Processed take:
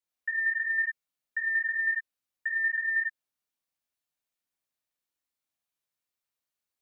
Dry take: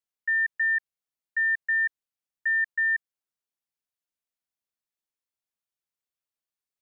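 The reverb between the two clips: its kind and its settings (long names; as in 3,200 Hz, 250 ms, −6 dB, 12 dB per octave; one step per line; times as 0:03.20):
reverb whose tail is shaped and stops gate 140 ms flat, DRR −4 dB
level −2.5 dB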